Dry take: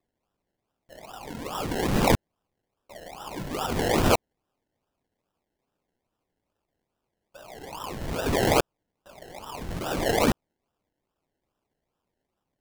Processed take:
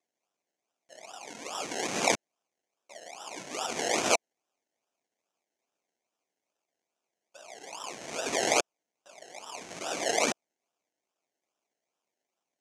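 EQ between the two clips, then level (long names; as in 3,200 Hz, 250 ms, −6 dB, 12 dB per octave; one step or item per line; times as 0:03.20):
loudspeaker in its box 300–9,400 Hz, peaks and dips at 680 Hz +5 dB, 2,300 Hz +7 dB, 6,300 Hz +9 dB
high-shelf EQ 3,300 Hz +8.5 dB
−7.0 dB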